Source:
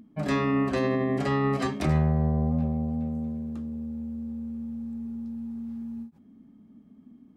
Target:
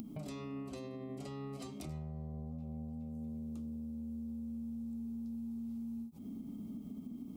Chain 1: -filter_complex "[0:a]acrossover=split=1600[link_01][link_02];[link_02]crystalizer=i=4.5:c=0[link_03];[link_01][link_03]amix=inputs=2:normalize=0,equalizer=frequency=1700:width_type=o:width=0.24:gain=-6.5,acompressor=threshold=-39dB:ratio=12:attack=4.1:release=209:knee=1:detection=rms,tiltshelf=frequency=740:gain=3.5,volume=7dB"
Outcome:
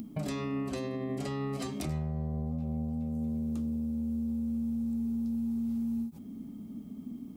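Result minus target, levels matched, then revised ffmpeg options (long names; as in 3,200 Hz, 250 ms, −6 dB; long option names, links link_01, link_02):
downward compressor: peak gain reduction −9.5 dB; 2,000 Hz band +3.0 dB
-filter_complex "[0:a]acrossover=split=1600[link_01][link_02];[link_02]crystalizer=i=4.5:c=0[link_03];[link_01][link_03]amix=inputs=2:normalize=0,equalizer=frequency=1700:width_type=o:width=0.24:gain=-18,acompressor=threshold=-49.5dB:ratio=12:attack=4.1:release=209:knee=1:detection=rms,tiltshelf=frequency=740:gain=3.5,volume=7dB"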